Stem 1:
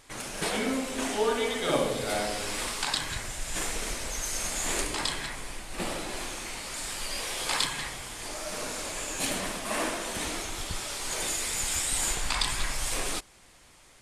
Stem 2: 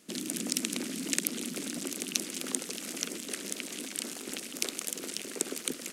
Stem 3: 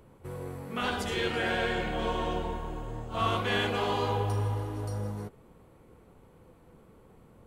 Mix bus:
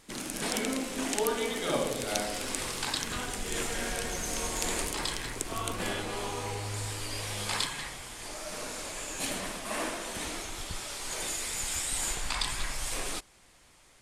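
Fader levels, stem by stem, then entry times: -3.5, -4.0, -8.0 dB; 0.00, 0.00, 2.35 s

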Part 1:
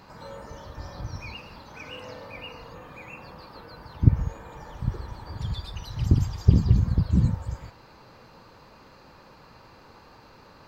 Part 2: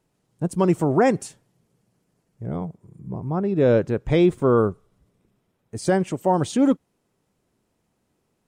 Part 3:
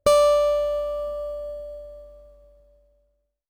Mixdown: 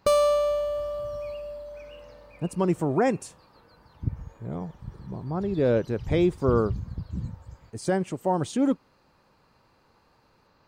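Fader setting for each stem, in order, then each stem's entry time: -12.0, -5.0, -4.0 dB; 0.00, 2.00, 0.00 s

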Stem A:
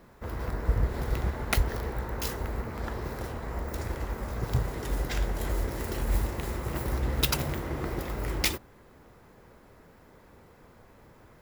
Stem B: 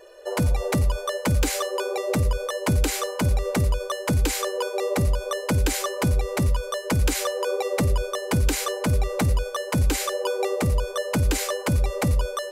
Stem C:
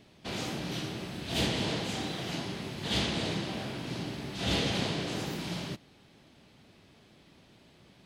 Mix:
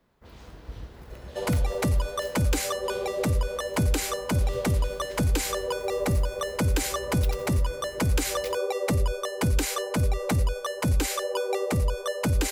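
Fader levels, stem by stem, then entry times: -14.0, -2.5, -18.5 dB; 0.00, 1.10, 0.00 s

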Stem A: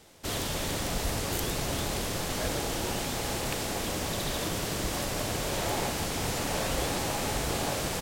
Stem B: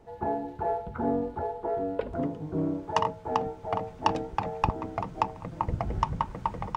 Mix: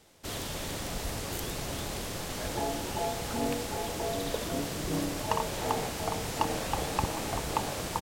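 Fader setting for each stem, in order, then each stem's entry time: -4.5, -4.5 dB; 0.00, 2.35 s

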